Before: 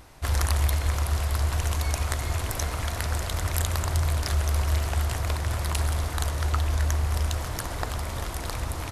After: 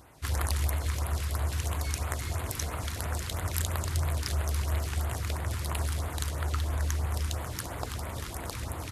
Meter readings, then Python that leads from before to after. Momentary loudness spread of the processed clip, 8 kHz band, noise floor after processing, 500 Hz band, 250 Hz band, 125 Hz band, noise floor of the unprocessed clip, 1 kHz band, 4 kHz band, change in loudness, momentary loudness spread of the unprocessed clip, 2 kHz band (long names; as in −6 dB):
6 LU, −3.5 dB, −39 dBFS, −4.5 dB, −3.0 dB, −5.0 dB, −34 dBFS, −5.0 dB, −4.5 dB, −5.0 dB, 6 LU, −5.0 dB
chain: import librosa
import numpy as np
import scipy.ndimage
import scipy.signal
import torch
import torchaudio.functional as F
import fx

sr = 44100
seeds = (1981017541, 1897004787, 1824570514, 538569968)

y = fx.filter_lfo_notch(x, sr, shape='sine', hz=3.0, low_hz=590.0, high_hz=5900.0, q=0.78)
y = scipy.signal.sosfilt(scipy.signal.butter(2, 71.0, 'highpass', fs=sr, output='sos'), y)
y = y * librosa.db_to_amplitude(-2.5)